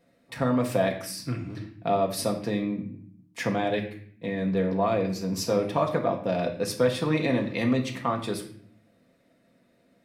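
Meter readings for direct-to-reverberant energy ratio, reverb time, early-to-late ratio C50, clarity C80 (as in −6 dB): 1.0 dB, 0.60 s, 9.0 dB, 12.5 dB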